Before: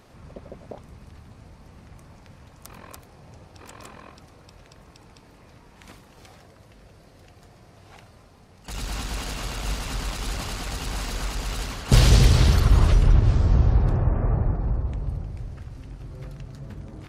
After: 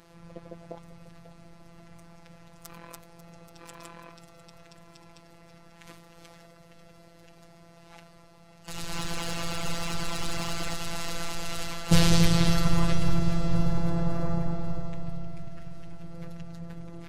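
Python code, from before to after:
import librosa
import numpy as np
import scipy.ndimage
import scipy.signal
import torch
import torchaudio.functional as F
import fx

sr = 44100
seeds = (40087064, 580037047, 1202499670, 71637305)

y = fx.robotise(x, sr, hz=169.0)
y = fx.leveller(y, sr, passes=1, at=(8.93, 10.74))
y = fx.echo_feedback(y, sr, ms=543, feedback_pct=54, wet_db=-13.5)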